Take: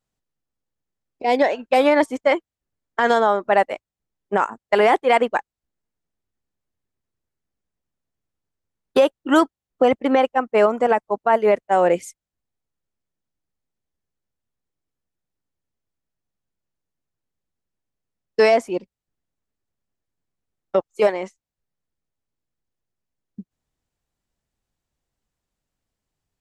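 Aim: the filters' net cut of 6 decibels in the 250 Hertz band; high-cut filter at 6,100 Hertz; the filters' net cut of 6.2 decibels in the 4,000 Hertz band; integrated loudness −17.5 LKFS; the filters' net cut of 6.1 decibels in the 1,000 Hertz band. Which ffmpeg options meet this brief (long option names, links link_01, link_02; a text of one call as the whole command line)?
ffmpeg -i in.wav -af "lowpass=6100,equalizer=frequency=250:width_type=o:gain=-7,equalizer=frequency=1000:width_type=o:gain=-8,equalizer=frequency=4000:width_type=o:gain=-8,volume=6dB" out.wav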